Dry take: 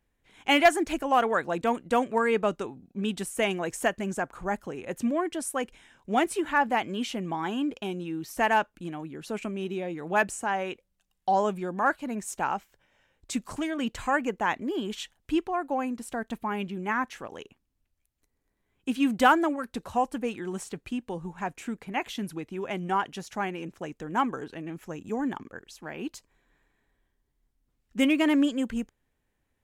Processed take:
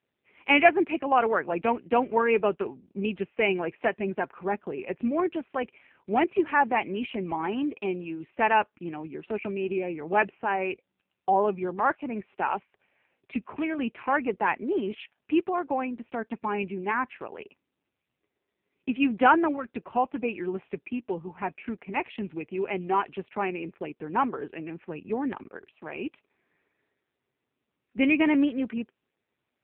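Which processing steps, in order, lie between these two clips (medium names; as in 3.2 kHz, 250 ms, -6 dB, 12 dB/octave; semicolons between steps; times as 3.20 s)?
cabinet simulation 130–2800 Hz, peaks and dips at 390 Hz +7 dB, 900 Hz +3 dB, 2.5 kHz +9 dB; AMR-NB 5.9 kbps 8 kHz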